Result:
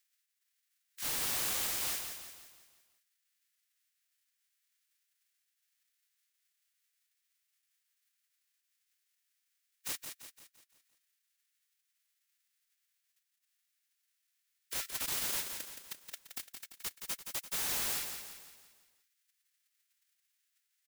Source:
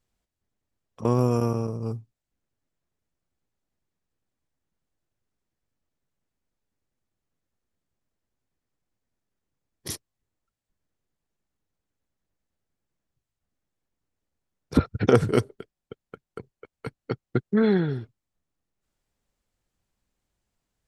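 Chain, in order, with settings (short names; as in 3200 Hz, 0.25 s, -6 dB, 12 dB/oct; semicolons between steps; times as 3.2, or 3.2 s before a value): spectral whitening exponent 0.1; in parallel at +1.5 dB: compressor 4:1, threshold -31 dBFS, peak gain reduction 16.5 dB; on the sum: limiter -7.5 dBFS, peak gain reduction 9.5 dB; Chebyshev high-pass 1700 Hz, order 3; wrapped overs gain 22 dB; on a send: feedback echo 0.171 s, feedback 48%, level -7 dB; on the sum: gain -8 dB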